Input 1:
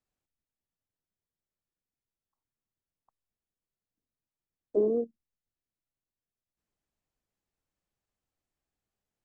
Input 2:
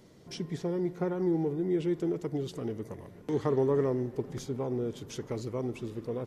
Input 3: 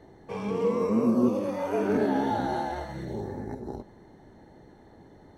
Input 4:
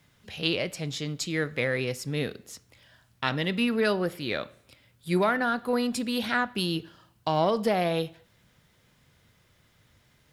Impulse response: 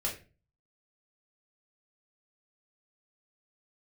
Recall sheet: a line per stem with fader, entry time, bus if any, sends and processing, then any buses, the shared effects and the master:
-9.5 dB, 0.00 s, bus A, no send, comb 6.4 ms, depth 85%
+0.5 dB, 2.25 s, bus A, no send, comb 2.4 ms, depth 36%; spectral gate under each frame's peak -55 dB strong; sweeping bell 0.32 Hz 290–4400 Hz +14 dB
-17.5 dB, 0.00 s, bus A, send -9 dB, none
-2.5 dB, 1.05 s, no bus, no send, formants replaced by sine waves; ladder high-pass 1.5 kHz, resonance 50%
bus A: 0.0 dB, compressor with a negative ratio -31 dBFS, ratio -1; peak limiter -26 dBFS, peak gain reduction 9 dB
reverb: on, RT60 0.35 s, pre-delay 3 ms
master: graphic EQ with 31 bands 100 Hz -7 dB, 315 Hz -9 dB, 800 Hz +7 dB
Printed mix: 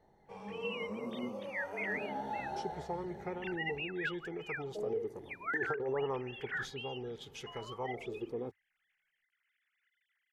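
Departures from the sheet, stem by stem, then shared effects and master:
stem 1 -9.5 dB -> -15.5 dB; stem 2 +0.5 dB -> -10.5 dB; stem 4: entry 1.05 s -> 0.20 s

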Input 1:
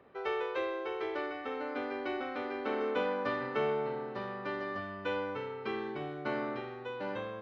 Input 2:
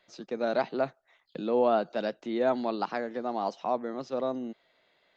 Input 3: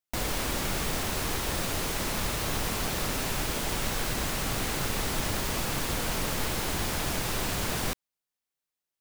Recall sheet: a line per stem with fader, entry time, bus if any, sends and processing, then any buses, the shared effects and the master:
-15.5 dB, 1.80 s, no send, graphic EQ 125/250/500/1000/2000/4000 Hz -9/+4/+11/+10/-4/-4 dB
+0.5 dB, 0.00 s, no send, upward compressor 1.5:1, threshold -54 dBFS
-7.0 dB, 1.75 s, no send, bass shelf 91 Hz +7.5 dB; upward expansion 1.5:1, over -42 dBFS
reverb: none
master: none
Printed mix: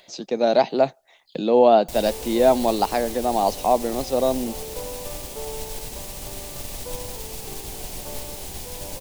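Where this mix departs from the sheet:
stem 2 +0.5 dB -> +8.5 dB; master: extra FFT filter 360 Hz 0 dB, 820 Hz +3 dB, 1.3 kHz -8 dB, 2.6 kHz +2 dB, 8.8 kHz +9 dB

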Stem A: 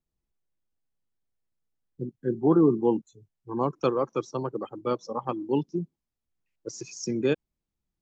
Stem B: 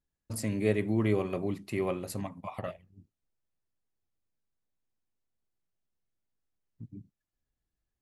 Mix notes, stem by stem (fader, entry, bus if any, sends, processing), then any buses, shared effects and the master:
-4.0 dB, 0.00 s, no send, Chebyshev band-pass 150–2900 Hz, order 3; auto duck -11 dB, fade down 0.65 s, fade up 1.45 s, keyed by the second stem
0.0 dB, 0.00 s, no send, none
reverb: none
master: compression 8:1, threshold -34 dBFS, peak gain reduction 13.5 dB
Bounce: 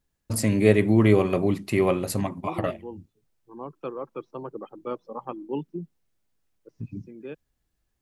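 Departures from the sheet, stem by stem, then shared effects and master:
stem B 0.0 dB -> +9.5 dB; master: missing compression 8:1, threshold -34 dBFS, peak gain reduction 13.5 dB

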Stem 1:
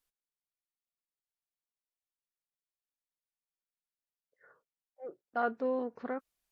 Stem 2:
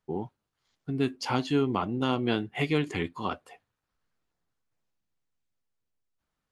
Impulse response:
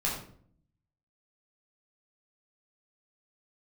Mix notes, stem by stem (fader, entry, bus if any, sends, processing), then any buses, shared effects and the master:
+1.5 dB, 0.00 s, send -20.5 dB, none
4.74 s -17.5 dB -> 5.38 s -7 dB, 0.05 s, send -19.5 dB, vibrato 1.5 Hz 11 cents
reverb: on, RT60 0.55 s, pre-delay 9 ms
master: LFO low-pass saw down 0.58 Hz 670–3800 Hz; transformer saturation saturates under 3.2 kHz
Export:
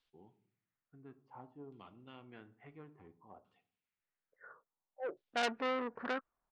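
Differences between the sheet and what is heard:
stem 1: send off; stem 2 -17.5 dB -> -28.5 dB

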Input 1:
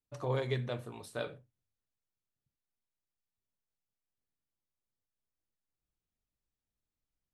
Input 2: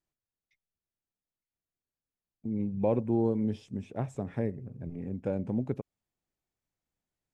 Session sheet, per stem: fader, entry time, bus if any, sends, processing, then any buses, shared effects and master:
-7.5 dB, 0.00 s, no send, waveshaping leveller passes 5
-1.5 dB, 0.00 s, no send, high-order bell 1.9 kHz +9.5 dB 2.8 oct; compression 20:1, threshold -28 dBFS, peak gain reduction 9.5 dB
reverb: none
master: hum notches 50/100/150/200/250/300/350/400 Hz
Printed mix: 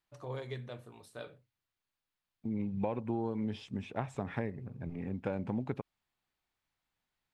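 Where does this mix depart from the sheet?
stem 1: missing waveshaping leveller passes 5; master: missing hum notches 50/100/150/200/250/300/350/400 Hz

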